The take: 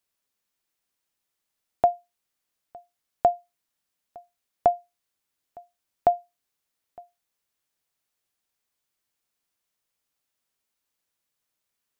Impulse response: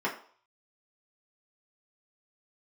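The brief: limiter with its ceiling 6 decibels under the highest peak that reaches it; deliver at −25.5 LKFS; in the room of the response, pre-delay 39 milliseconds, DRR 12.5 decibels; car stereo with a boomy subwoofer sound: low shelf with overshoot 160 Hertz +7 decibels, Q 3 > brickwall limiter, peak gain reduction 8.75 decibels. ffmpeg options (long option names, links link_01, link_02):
-filter_complex "[0:a]alimiter=limit=-14.5dB:level=0:latency=1,asplit=2[link_01][link_02];[1:a]atrim=start_sample=2205,adelay=39[link_03];[link_02][link_03]afir=irnorm=-1:irlink=0,volume=-22dB[link_04];[link_01][link_04]amix=inputs=2:normalize=0,lowshelf=frequency=160:width_type=q:width=3:gain=7,volume=11.5dB,alimiter=limit=-11dB:level=0:latency=1"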